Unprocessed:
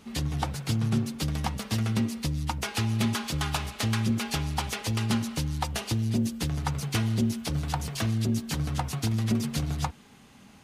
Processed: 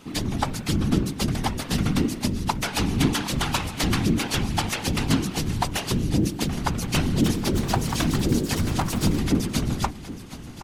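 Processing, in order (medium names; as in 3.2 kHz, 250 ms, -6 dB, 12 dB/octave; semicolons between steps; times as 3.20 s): peaking EQ 92 Hz -9.5 dB 0.3 oct; whisper effect; feedback delay 769 ms, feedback 47%, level -15 dB; 6.90–9.23 s: ever faster or slower copies 322 ms, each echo +3 st, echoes 2, each echo -6 dB; trim +5 dB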